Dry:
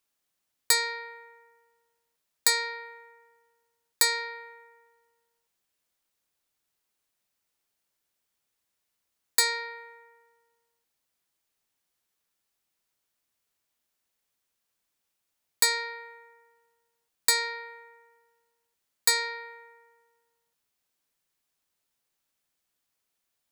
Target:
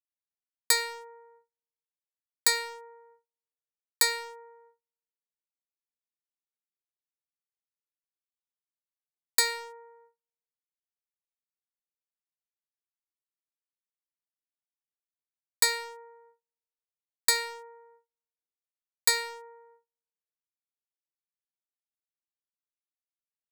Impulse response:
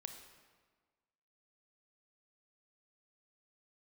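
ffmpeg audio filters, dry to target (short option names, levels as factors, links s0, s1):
-filter_complex "[0:a]agate=range=0.0158:threshold=0.002:ratio=16:detection=peak,acrossover=split=350|1100[s0][s1][s2];[s2]aeval=exprs='sgn(val(0))*max(abs(val(0))-0.015,0)':c=same[s3];[s0][s1][s3]amix=inputs=3:normalize=0"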